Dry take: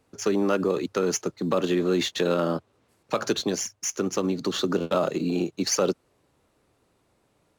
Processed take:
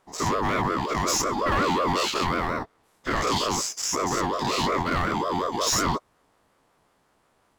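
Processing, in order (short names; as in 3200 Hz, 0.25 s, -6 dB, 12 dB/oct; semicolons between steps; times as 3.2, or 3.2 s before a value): spectral dilation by 0.12 s; 1.07–1.93 comb 3.6 ms, depth 89%; added harmonics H 5 -11 dB, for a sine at -4 dBFS; ring modulator with a swept carrier 700 Hz, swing 25%, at 5.5 Hz; gain -8 dB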